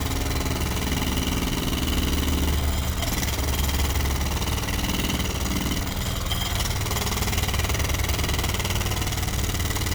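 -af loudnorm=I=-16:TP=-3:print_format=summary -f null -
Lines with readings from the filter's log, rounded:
Input Integrated:    -24.9 LUFS
Input True Peak:      -9.8 dBTP
Input LRA:             0.5 LU
Input Threshold:     -34.9 LUFS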